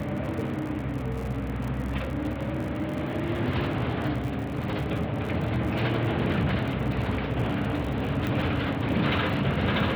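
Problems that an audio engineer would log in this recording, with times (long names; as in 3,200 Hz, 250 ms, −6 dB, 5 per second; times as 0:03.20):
surface crackle 71 per second −34 dBFS
0:08.27: click −18 dBFS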